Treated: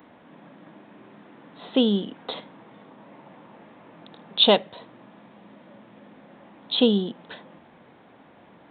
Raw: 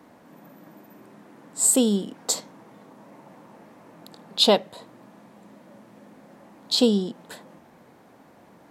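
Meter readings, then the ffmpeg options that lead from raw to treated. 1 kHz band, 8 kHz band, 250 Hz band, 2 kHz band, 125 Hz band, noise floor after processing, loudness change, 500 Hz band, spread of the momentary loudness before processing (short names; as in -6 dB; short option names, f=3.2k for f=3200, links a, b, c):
+0.5 dB, under -40 dB, 0.0 dB, +3.0 dB, 0.0 dB, -53 dBFS, -1.0 dB, 0.0 dB, 13 LU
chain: -af "aresample=8000,aresample=44100,aemphasis=mode=production:type=75kf"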